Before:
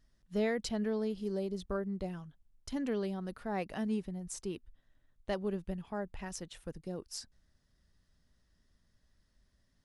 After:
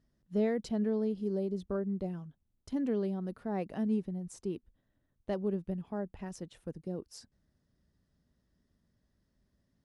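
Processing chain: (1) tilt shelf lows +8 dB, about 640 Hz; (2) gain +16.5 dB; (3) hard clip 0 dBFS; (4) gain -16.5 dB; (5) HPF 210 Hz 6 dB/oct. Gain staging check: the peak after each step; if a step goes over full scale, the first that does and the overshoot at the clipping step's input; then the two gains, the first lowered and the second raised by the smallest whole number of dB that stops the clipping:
-18.5, -2.0, -2.0, -18.5, -20.0 dBFS; no overload

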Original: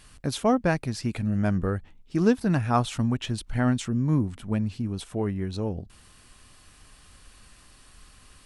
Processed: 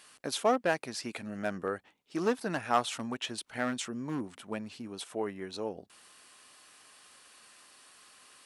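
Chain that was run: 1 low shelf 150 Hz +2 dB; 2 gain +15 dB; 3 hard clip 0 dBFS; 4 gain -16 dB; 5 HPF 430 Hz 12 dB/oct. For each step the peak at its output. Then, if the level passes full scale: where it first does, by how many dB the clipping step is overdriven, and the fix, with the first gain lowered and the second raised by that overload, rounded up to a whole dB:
-7.5, +7.5, 0.0, -16.0, -12.0 dBFS; step 2, 7.5 dB; step 2 +7 dB, step 4 -8 dB

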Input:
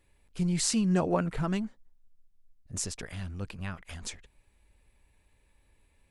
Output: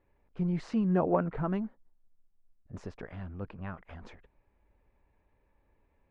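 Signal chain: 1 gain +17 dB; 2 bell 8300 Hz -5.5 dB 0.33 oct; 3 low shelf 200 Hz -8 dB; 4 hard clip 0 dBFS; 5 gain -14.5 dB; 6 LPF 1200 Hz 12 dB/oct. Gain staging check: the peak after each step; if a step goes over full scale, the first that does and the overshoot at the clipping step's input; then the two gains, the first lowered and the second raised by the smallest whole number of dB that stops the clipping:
+6.5, +5.0, +5.0, 0.0, -14.5, -14.5 dBFS; step 1, 5.0 dB; step 1 +12 dB, step 5 -9.5 dB

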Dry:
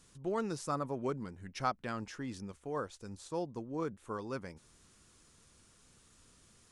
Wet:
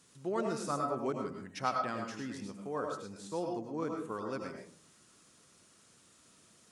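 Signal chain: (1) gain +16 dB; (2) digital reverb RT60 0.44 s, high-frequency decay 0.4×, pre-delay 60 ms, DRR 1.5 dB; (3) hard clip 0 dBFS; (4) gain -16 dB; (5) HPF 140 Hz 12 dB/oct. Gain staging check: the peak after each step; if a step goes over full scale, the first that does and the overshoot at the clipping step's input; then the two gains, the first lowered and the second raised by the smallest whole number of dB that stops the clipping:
-2.0, -2.0, -2.0, -18.0, -17.5 dBFS; no overload

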